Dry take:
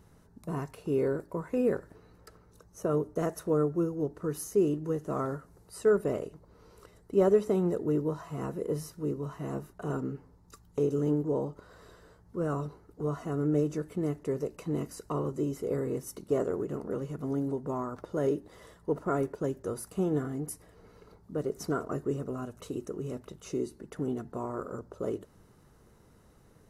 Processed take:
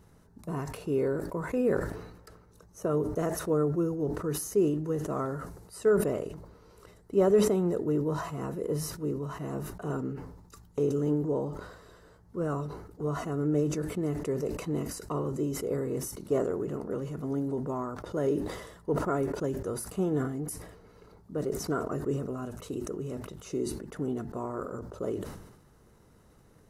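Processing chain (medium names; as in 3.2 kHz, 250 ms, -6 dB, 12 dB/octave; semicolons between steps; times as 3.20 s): decay stretcher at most 59 dB/s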